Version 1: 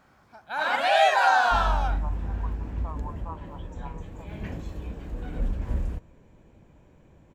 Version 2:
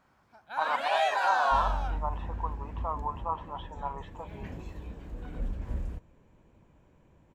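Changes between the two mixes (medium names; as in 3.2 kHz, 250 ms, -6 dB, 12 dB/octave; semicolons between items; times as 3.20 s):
speech +8.0 dB; first sound -7.5 dB; second sound -6.0 dB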